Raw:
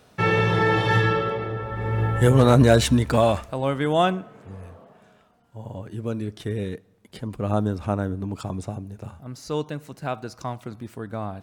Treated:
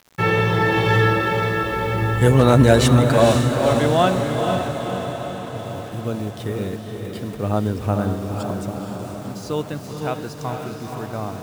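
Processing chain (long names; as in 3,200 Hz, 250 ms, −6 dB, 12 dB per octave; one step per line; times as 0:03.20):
bit reduction 8 bits
feedback delay with all-pass diffusion 491 ms, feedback 61%, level −4.5 dB
level +2 dB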